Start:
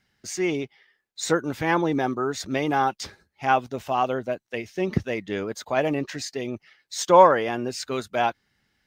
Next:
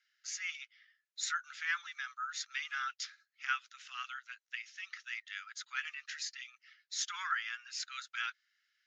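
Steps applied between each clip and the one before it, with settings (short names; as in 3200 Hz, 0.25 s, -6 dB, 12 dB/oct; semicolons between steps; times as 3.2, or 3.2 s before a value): Chebyshev band-pass 1300–7000 Hz, order 5; gain -5.5 dB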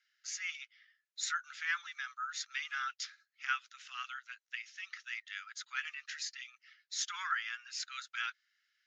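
nothing audible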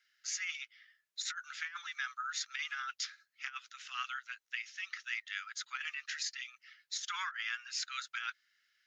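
negative-ratio compressor -39 dBFS, ratio -0.5; gain +1.5 dB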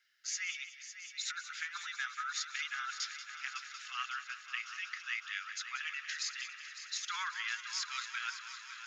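multi-head echo 0.185 s, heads first and third, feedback 74%, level -12.5 dB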